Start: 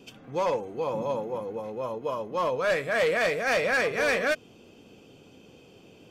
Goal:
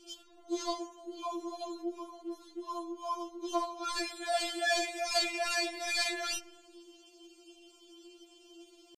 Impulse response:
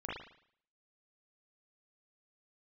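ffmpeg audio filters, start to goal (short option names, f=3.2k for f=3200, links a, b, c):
-filter_complex "[0:a]equalizer=f=250:t=o:w=1:g=5,equalizer=f=2k:t=o:w=1:g=-9,equalizer=f=4k:t=o:w=1:g=10,equalizer=f=8k:t=o:w=1:g=11,atempo=0.68,asplit=2[a][b];[1:a]atrim=start_sample=2205,asetrate=25137,aresample=44100[c];[b][c]afir=irnorm=-1:irlink=0,volume=-19.5dB[d];[a][d]amix=inputs=2:normalize=0,afftfilt=real='re*4*eq(mod(b,16),0)':imag='im*4*eq(mod(b,16),0)':win_size=2048:overlap=0.75,volume=-4dB"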